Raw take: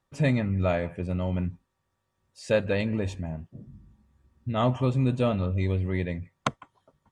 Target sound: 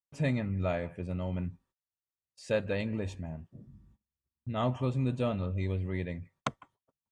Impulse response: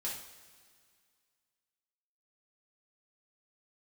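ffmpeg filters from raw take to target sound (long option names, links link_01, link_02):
-af "agate=range=-26dB:threshold=-56dB:ratio=16:detection=peak,volume=-6dB"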